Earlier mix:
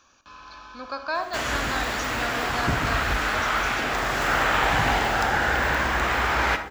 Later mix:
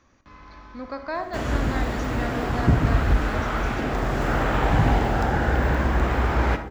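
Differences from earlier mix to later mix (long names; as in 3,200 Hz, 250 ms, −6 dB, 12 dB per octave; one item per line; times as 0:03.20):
speech: remove Butterworth band-reject 2,000 Hz, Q 3.5
master: add tilt shelving filter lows +9.5 dB, about 680 Hz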